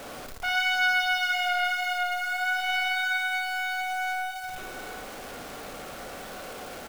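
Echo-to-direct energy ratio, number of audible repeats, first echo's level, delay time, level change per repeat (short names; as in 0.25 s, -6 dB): -3.0 dB, 4, -5.0 dB, 57 ms, no steady repeat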